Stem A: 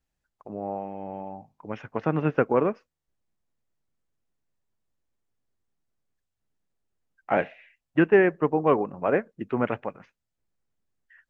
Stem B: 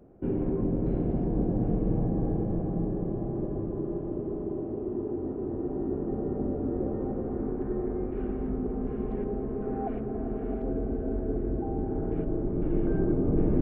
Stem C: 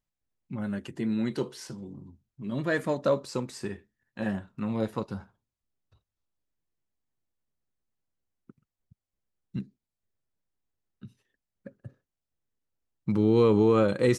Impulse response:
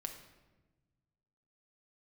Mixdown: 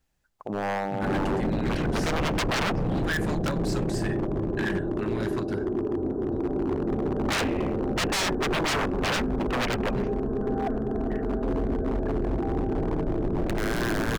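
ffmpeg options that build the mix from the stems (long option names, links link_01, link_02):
-filter_complex "[0:a]volume=1.5dB[link_01];[1:a]lowpass=frequency=1300:width=0.5412,lowpass=frequency=1300:width=1.3066,dynaudnorm=framelen=180:gausssize=3:maxgain=9dB,adelay=800,volume=-10.5dB[link_02];[2:a]equalizer=frequency=460:width=0.58:gain=-12.5,aeval=exprs='(mod(15*val(0)+1,2)-1)/15':channel_layout=same,adelay=400,volume=-1.5dB[link_03];[link_02][link_03]amix=inputs=2:normalize=0,equalizer=frequency=1600:width=3.5:gain=11.5,alimiter=limit=-21.5dB:level=0:latency=1:release=121,volume=0dB[link_04];[link_01][link_04]amix=inputs=2:normalize=0,acontrast=54,aeval=exprs='0.0944*(abs(mod(val(0)/0.0944+3,4)-2)-1)':channel_layout=same"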